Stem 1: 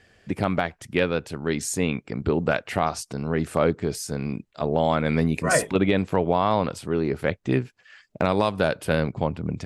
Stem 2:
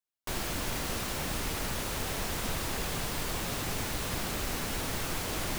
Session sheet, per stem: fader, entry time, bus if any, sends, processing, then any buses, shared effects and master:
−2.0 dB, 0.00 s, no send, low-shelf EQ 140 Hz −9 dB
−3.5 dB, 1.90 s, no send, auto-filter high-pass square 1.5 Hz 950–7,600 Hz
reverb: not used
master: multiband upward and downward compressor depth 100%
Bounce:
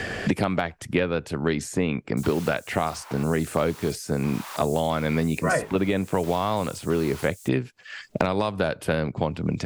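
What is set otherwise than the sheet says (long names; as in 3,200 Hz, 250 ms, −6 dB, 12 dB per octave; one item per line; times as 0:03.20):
stem 1: missing low-shelf EQ 140 Hz −9 dB
stem 2 −3.5 dB → −14.0 dB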